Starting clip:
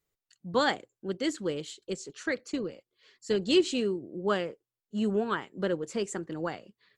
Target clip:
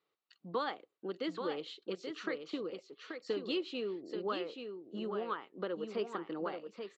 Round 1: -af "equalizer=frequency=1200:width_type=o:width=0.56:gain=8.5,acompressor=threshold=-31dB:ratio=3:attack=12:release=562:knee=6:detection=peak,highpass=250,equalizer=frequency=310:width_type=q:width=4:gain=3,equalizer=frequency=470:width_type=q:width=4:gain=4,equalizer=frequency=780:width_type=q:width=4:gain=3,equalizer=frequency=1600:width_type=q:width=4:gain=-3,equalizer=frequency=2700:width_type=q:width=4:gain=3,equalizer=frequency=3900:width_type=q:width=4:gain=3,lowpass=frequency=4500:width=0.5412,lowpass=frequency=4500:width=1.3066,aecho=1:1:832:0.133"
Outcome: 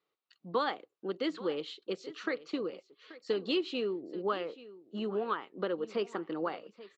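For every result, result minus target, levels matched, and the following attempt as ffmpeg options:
echo-to-direct −11 dB; downward compressor: peak gain reduction −4.5 dB
-af "equalizer=frequency=1200:width_type=o:width=0.56:gain=8.5,acompressor=threshold=-31dB:ratio=3:attack=12:release=562:knee=6:detection=peak,highpass=250,equalizer=frequency=310:width_type=q:width=4:gain=3,equalizer=frequency=470:width_type=q:width=4:gain=4,equalizer=frequency=780:width_type=q:width=4:gain=3,equalizer=frequency=1600:width_type=q:width=4:gain=-3,equalizer=frequency=2700:width_type=q:width=4:gain=3,equalizer=frequency=3900:width_type=q:width=4:gain=3,lowpass=frequency=4500:width=0.5412,lowpass=frequency=4500:width=1.3066,aecho=1:1:832:0.473"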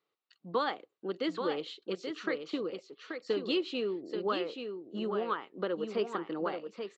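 downward compressor: peak gain reduction −4.5 dB
-af "equalizer=frequency=1200:width_type=o:width=0.56:gain=8.5,acompressor=threshold=-38dB:ratio=3:attack=12:release=562:knee=6:detection=peak,highpass=250,equalizer=frequency=310:width_type=q:width=4:gain=3,equalizer=frequency=470:width_type=q:width=4:gain=4,equalizer=frequency=780:width_type=q:width=4:gain=3,equalizer=frequency=1600:width_type=q:width=4:gain=-3,equalizer=frequency=2700:width_type=q:width=4:gain=3,equalizer=frequency=3900:width_type=q:width=4:gain=3,lowpass=frequency=4500:width=0.5412,lowpass=frequency=4500:width=1.3066,aecho=1:1:832:0.473"

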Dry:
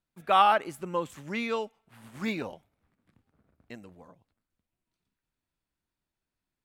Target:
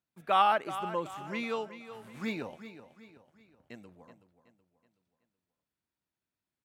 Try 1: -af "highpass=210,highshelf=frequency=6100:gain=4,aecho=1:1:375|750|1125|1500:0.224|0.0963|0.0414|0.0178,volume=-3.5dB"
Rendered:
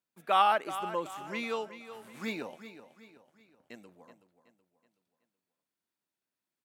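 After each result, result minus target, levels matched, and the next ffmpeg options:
125 Hz band −5.0 dB; 8,000 Hz band +3.5 dB
-af "highpass=82,highshelf=frequency=6100:gain=4,aecho=1:1:375|750|1125|1500:0.224|0.0963|0.0414|0.0178,volume=-3.5dB"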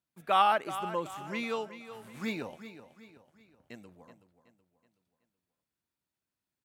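8,000 Hz band +3.5 dB
-af "highpass=82,highshelf=frequency=6100:gain=-2,aecho=1:1:375|750|1125|1500:0.224|0.0963|0.0414|0.0178,volume=-3.5dB"

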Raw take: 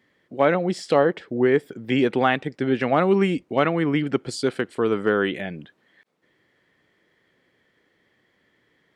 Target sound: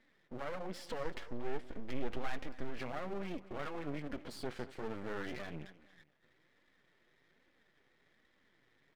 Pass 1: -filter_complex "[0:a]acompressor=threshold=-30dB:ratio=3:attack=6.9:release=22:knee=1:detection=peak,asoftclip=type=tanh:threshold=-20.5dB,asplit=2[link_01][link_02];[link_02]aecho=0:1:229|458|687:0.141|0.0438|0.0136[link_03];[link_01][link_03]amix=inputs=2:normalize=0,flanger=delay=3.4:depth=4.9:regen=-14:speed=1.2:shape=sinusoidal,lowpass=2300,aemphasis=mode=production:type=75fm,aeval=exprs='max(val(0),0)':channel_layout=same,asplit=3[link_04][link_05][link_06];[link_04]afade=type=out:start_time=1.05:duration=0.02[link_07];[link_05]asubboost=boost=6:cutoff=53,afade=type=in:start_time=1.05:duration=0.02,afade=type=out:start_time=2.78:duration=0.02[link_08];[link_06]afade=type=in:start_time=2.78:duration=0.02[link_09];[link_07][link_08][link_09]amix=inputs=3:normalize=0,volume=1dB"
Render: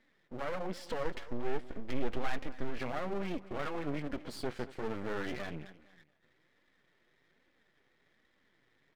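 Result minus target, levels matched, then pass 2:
downward compressor: peak gain reduction −5 dB
-filter_complex "[0:a]acompressor=threshold=-37.5dB:ratio=3:attack=6.9:release=22:knee=1:detection=peak,asoftclip=type=tanh:threshold=-20.5dB,asplit=2[link_01][link_02];[link_02]aecho=0:1:229|458|687:0.141|0.0438|0.0136[link_03];[link_01][link_03]amix=inputs=2:normalize=0,flanger=delay=3.4:depth=4.9:regen=-14:speed=1.2:shape=sinusoidal,lowpass=2300,aemphasis=mode=production:type=75fm,aeval=exprs='max(val(0),0)':channel_layout=same,asplit=3[link_04][link_05][link_06];[link_04]afade=type=out:start_time=1.05:duration=0.02[link_07];[link_05]asubboost=boost=6:cutoff=53,afade=type=in:start_time=1.05:duration=0.02,afade=type=out:start_time=2.78:duration=0.02[link_08];[link_06]afade=type=in:start_time=2.78:duration=0.02[link_09];[link_07][link_08][link_09]amix=inputs=3:normalize=0,volume=1dB"

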